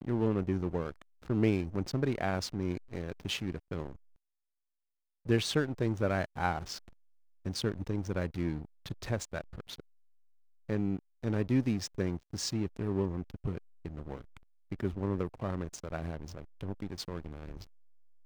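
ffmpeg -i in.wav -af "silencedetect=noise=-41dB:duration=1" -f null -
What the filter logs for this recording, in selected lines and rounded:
silence_start: 3.93
silence_end: 5.26 | silence_duration: 1.33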